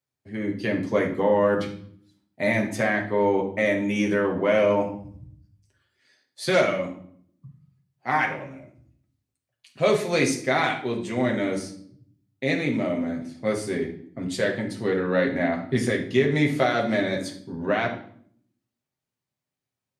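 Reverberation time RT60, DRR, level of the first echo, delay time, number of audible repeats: 0.60 s, 0.0 dB, none, none, none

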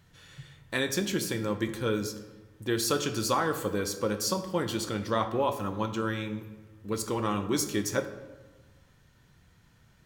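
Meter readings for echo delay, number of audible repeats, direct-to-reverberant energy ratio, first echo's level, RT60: none, none, 8.5 dB, none, 1.3 s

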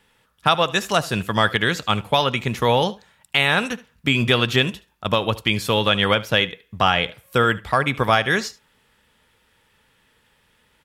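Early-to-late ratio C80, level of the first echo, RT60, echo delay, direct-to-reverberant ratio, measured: none, -19.5 dB, none, 74 ms, none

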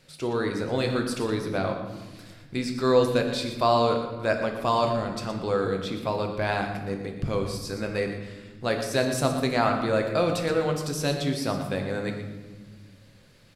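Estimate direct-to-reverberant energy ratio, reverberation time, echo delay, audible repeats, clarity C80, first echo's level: 3.0 dB, 1.4 s, 0.118 s, 1, 7.0 dB, -12.0 dB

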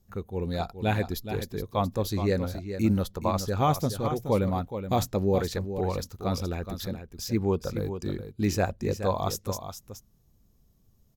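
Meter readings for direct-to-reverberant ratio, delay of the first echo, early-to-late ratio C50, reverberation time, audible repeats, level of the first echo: none, 0.422 s, none, none, 1, -9.5 dB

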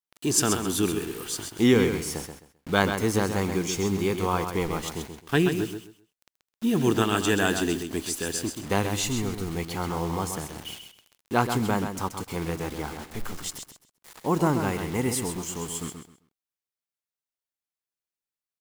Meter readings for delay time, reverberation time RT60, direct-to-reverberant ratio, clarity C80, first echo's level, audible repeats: 0.131 s, none, none, none, -7.5 dB, 3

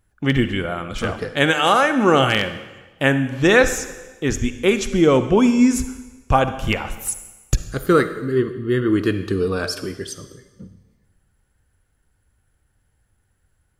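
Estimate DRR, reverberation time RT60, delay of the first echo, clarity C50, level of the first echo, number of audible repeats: 10.5 dB, 1.2 s, none, 11.5 dB, none, none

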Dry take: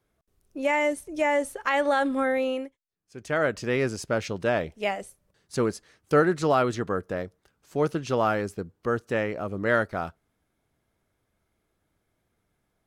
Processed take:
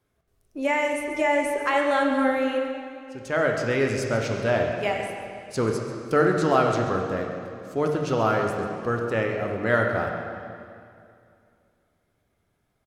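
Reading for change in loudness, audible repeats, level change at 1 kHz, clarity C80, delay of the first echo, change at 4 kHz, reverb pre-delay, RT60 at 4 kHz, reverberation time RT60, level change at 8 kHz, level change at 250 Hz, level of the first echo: +2.0 dB, 1, +2.5 dB, 4.0 dB, 0.136 s, +2.0 dB, 4 ms, 2.1 s, 2.4 s, +1.0 dB, +2.5 dB, -13.0 dB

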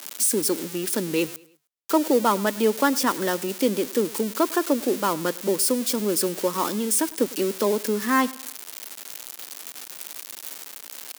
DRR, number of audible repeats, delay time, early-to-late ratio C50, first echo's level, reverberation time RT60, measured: none, 2, 0.104 s, none, -21.5 dB, none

